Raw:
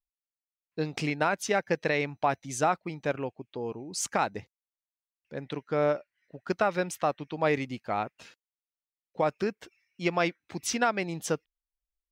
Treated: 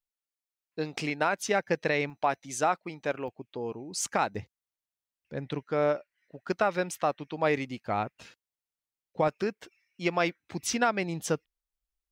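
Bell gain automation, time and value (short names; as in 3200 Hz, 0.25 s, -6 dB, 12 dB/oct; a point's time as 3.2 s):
bell 64 Hz 2.8 oct
-9 dB
from 1.38 s -1 dB
from 2.1 s -11.5 dB
from 3.28 s -2 dB
from 4.35 s +7 dB
from 5.63 s -3.5 dB
from 7.85 s +6.5 dB
from 9.28 s -3.5 dB
from 10.29 s +3.5 dB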